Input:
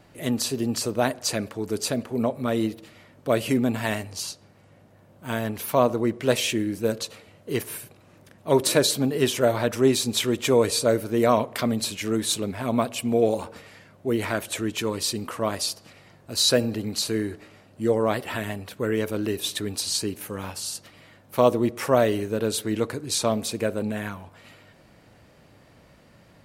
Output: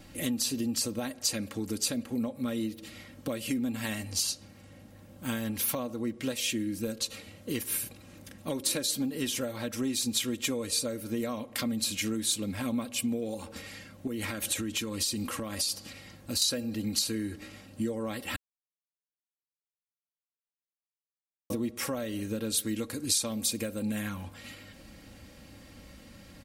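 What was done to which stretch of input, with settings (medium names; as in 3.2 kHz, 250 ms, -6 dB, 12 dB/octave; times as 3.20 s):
14.07–16.42 s: compression, threshold -30 dBFS
18.36–21.50 s: mute
22.57–24.02 s: treble shelf 5.9 kHz +6.5 dB
whole clip: comb 3.7 ms, depth 60%; compression 5:1, threshold -32 dBFS; peaking EQ 780 Hz -10.5 dB 2.9 oct; trim +7 dB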